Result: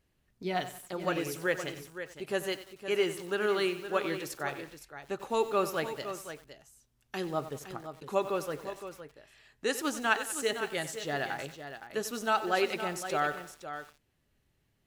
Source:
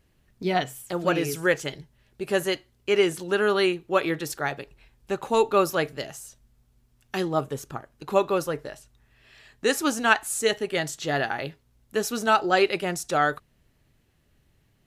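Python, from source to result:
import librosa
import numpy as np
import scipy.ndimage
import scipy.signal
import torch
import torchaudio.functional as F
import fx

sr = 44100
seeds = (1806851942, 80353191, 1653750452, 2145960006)

p1 = fx.low_shelf(x, sr, hz=200.0, db=-3.0)
p2 = p1 + fx.echo_single(p1, sr, ms=514, db=-10.5, dry=0)
p3 = fx.echo_crushed(p2, sr, ms=93, feedback_pct=55, bits=6, wet_db=-12.5)
y = F.gain(torch.from_numpy(p3), -7.5).numpy()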